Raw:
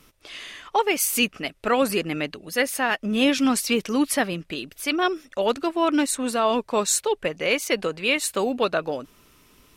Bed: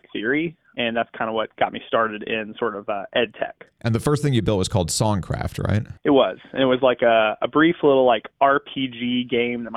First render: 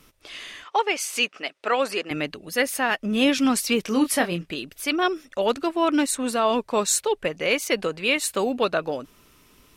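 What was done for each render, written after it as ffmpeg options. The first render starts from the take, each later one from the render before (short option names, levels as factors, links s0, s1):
-filter_complex "[0:a]asettb=1/sr,asplit=3[s0][s1][s2];[s0]atrim=end=0.644[s3];[s1]atrim=start=0.64:end=2.11,asetpts=PTS-STARTPTS,afade=t=in:d=0.004:c=qsin,afade=t=out:st=1.466:d=0.004:c=qsin,highpass=440,lowpass=6800[s4];[s2]atrim=start=2.106[s5];[s3][s4]acrossfade=d=0.004:c1=hsin:c2=qsin[s6];[s6][s5]acrossfade=d=0.004:c1=qsin:c2=hsin,asettb=1/sr,asplit=3[s7][s8][s9];[s7]atrim=end=3.854[s10];[s8]atrim=start=3.85:end=4.52,asetpts=PTS-STARTPTS,afade=t=in:d=0.004:c=qsin,afade=t=out:st=0.666:d=0.004:c=qsin,asplit=2[s11][s12];[s12]adelay=23,volume=0.447[s13];[s11][s13]amix=inputs=2:normalize=0,atrim=end_sample=29547[s14];[s9]atrim=start=4.516[s15];[s10][s14]acrossfade=d=0.004:c1=hsin:c2=qsin[s16];[s16][s15]acrossfade=d=0.004:c1=qsin:c2=hsin"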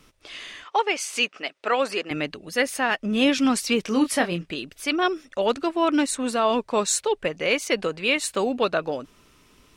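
-af "equalizer=f=13000:t=o:w=0.44:g=-12"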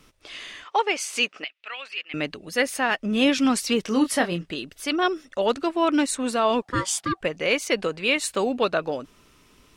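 -filter_complex "[0:a]asettb=1/sr,asplit=3[s0][s1][s2];[s0]atrim=end=1.444[s3];[s1]atrim=start=1.44:end=2.14,asetpts=PTS-STARTPTS,afade=t=in:d=0.004:c=qsin,afade=t=out:st=0.696:d=0.004:c=qsin,bandpass=f=2700:t=q:w=2.7[s4];[s2]atrim=start=2.136[s5];[s3][s4]acrossfade=d=0.004:c1=hsin:c2=qsin[s6];[s6][s5]acrossfade=d=0.004:c1=qsin:c2=hsin,asettb=1/sr,asplit=3[s7][s8][s9];[s7]atrim=end=3.694[s10];[s8]atrim=start=3.69:end=5.57,asetpts=PTS-STARTPTS,afade=t=in:d=0.004:c=qsin,afade=t=out:st=1.876:d=0.004:c=qsin,bandreject=f=2400:w=12[s11];[s9]atrim=start=5.566[s12];[s10][s11]acrossfade=d=0.004:c1=hsin:c2=qsin[s13];[s13][s12]acrossfade=d=0.004:c1=qsin:c2=hsin,asettb=1/sr,asplit=3[s14][s15][s16];[s14]atrim=end=6.624[s17];[s15]atrim=start=6.62:end=7.21,asetpts=PTS-STARTPTS,afade=t=in:d=0.004:c=qsin,afade=t=out:st=0.586:d=0.004:c=qsin,aeval=exprs='val(0)*sin(2*PI*750*n/s)':c=same[s18];[s16]atrim=start=7.206[s19];[s17][s18]acrossfade=d=0.004:c1=hsin:c2=qsin[s20];[s20][s19]acrossfade=d=0.004:c1=qsin:c2=hsin"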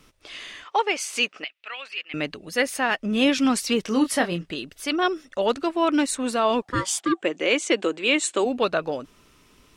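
-filter_complex "[0:a]asplit=3[s0][s1][s2];[s0]afade=t=out:st=6.99:d=0.02[s3];[s1]highpass=f=180:w=0.5412,highpass=f=180:w=1.3066,equalizer=f=180:t=q:w=4:g=-7,equalizer=f=330:t=q:w=4:g=9,equalizer=f=3300:t=q:w=4:g=4,equalizer=f=4800:t=q:w=4:g=-6,equalizer=f=7600:t=q:w=4:g=8,lowpass=f=8900:w=0.5412,lowpass=f=8900:w=1.3066,afade=t=in:st=6.99:d=0.02,afade=t=out:st=8.44:d=0.02[s4];[s2]afade=t=in:st=8.44:d=0.02[s5];[s3][s4][s5]amix=inputs=3:normalize=0"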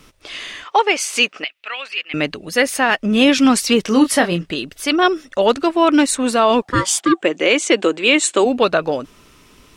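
-af "volume=2.51,alimiter=limit=0.708:level=0:latency=1"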